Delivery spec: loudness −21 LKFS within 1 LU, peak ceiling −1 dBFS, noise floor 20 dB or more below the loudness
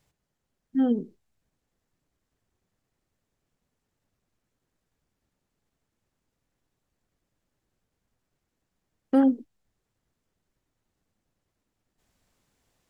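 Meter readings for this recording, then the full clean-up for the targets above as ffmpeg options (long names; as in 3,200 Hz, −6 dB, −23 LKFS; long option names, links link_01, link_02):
integrated loudness −25.0 LKFS; sample peak −11.5 dBFS; target loudness −21.0 LKFS
→ -af "volume=4dB"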